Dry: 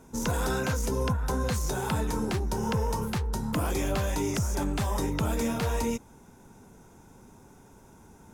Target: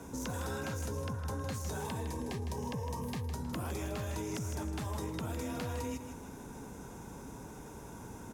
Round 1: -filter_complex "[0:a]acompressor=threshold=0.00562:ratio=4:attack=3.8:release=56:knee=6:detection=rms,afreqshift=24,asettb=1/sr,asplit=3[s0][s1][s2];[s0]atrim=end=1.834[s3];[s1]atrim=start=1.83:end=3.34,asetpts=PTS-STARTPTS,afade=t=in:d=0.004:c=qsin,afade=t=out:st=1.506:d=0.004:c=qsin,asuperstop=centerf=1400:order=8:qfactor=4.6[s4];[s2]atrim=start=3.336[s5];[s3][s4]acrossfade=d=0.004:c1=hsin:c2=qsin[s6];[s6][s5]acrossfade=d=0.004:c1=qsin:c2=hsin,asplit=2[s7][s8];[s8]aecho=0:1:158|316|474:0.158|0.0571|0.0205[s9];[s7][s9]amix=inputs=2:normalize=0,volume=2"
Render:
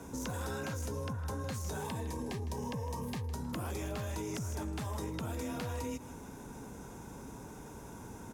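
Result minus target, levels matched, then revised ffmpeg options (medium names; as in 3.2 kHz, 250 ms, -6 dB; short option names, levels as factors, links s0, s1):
echo-to-direct -6.5 dB
-filter_complex "[0:a]acompressor=threshold=0.00562:ratio=4:attack=3.8:release=56:knee=6:detection=rms,afreqshift=24,asettb=1/sr,asplit=3[s0][s1][s2];[s0]atrim=end=1.834[s3];[s1]atrim=start=1.83:end=3.34,asetpts=PTS-STARTPTS,afade=t=in:d=0.004:c=qsin,afade=t=out:st=1.506:d=0.004:c=qsin,asuperstop=centerf=1400:order=8:qfactor=4.6[s4];[s2]atrim=start=3.336[s5];[s3][s4]acrossfade=d=0.004:c1=hsin:c2=qsin[s6];[s6][s5]acrossfade=d=0.004:c1=qsin:c2=hsin,asplit=2[s7][s8];[s8]aecho=0:1:158|316|474|632:0.335|0.121|0.0434|0.0156[s9];[s7][s9]amix=inputs=2:normalize=0,volume=2"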